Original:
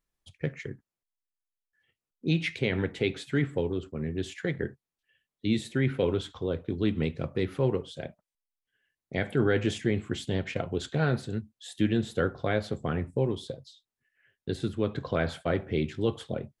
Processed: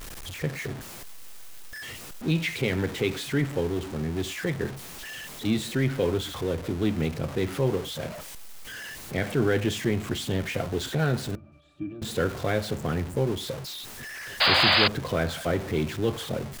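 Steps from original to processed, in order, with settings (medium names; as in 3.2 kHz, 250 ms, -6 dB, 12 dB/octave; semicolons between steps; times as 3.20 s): jump at every zero crossing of -32.5 dBFS; 11.35–12.02 s: pitch-class resonator D, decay 0.14 s; 14.40–14.88 s: painted sound noise 490–5000 Hz -20 dBFS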